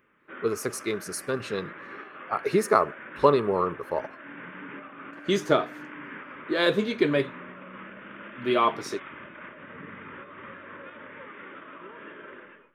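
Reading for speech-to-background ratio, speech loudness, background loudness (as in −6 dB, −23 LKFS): 16.0 dB, −26.5 LKFS, −42.5 LKFS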